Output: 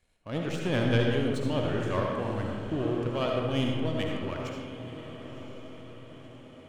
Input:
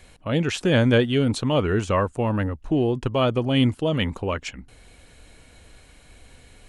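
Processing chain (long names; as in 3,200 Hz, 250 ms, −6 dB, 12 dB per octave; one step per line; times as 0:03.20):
power curve on the samples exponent 1.4
feedback delay with all-pass diffusion 1,024 ms, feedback 53%, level −12 dB
comb and all-pass reverb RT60 1.5 s, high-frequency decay 0.5×, pre-delay 30 ms, DRR 0 dB
level −7 dB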